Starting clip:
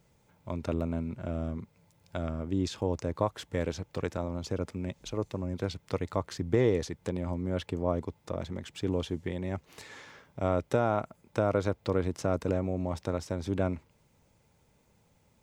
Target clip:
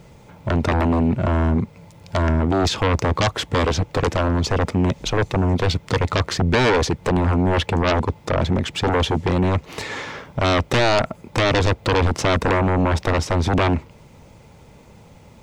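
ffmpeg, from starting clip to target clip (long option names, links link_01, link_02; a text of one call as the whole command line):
ffmpeg -i in.wav -filter_complex "[0:a]lowpass=frequency=3700:poles=1,equalizer=frequency=1600:width_type=o:width=0.24:gain=-4,asplit=2[link_01][link_02];[link_02]aeval=exprs='0.237*sin(PI/2*7.94*val(0)/0.237)':channel_layout=same,volume=-5.5dB[link_03];[link_01][link_03]amix=inputs=2:normalize=0,volume=3dB" out.wav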